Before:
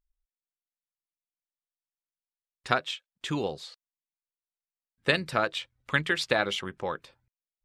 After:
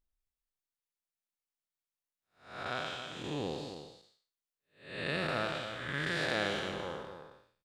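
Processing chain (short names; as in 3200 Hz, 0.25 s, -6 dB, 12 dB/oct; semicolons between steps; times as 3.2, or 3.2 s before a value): time blur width 0.304 s; on a send: echo 0.27 s -9 dB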